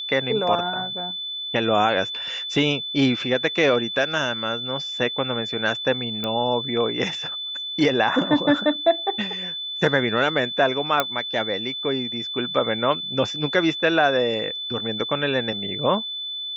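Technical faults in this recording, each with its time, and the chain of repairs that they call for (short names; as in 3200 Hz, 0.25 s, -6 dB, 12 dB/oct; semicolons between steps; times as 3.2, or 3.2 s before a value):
tone 3500 Hz -28 dBFS
6.24 pop -13 dBFS
11 pop -5 dBFS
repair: de-click; notch 3500 Hz, Q 30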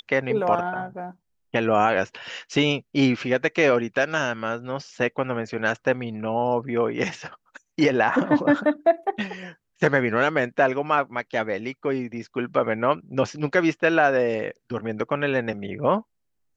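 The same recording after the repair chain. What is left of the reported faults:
none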